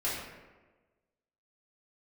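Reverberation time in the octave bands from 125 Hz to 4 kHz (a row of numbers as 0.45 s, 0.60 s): 1.2 s, 1.3 s, 1.4 s, 1.2 s, 1.1 s, 0.70 s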